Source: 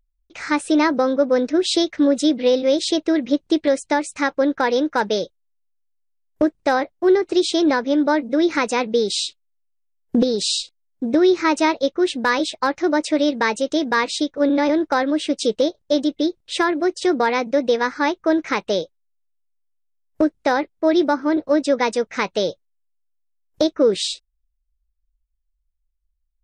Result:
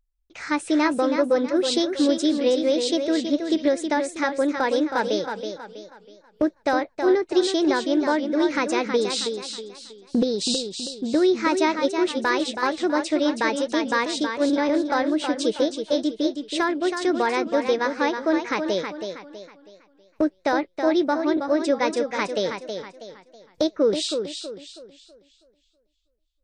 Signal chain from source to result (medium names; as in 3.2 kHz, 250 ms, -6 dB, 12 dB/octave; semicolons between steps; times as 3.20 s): modulated delay 322 ms, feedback 37%, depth 67 cents, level -7 dB; trim -4 dB